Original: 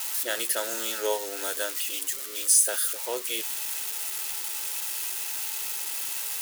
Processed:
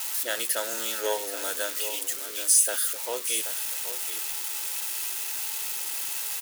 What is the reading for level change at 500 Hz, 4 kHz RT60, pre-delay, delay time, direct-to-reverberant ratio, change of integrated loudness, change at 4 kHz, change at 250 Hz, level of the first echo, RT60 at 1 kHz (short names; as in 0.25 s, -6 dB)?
-0.5 dB, none, none, 0.779 s, none, +0.5 dB, +0.5 dB, -1.5 dB, -11.0 dB, none